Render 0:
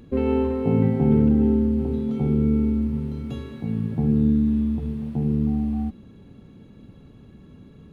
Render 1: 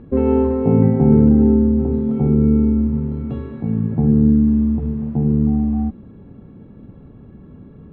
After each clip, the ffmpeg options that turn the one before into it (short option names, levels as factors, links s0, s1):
-af "lowpass=1400,volume=2"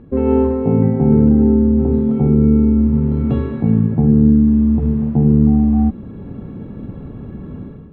-af "dynaudnorm=f=110:g=5:m=3.76,volume=0.891"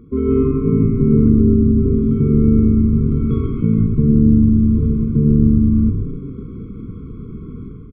-filter_complex "[0:a]asplit=2[s0][s1];[s1]asplit=6[s2][s3][s4][s5][s6][s7];[s2]adelay=133,afreqshift=-120,volume=0.501[s8];[s3]adelay=266,afreqshift=-240,volume=0.251[s9];[s4]adelay=399,afreqshift=-360,volume=0.126[s10];[s5]adelay=532,afreqshift=-480,volume=0.0624[s11];[s6]adelay=665,afreqshift=-600,volume=0.0313[s12];[s7]adelay=798,afreqshift=-720,volume=0.0157[s13];[s8][s9][s10][s11][s12][s13]amix=inputs=6:normalize=0[s14];[s0][s14]amix=inputs=2:normalize=0,afftfilt=real='re*eq(mod(floor(b*sr/1024/510),2),0)':imag='im*eq(mod(floor(b*sr/1024/510),2),0)':win_size=1024:overlap=0.75,volume=0.841"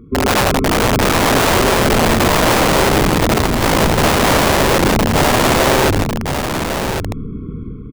-af "aeval=exprs='(mod(3.76*val(0)+1,2)-1)/3.76':c=same,aecho=1:1:1100:0.473,volume=1.41"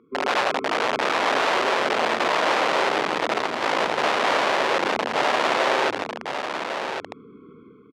-af "highpass=500,lowpass=3800,volume=0.531"